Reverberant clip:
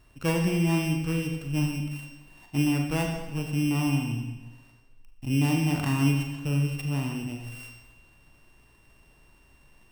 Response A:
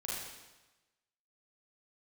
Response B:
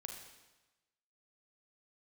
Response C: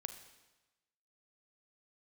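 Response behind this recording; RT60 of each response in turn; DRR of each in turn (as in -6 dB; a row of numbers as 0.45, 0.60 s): B; 1.1, 1.1, 1.1 s; -6.5, 2.5, 8.0 dB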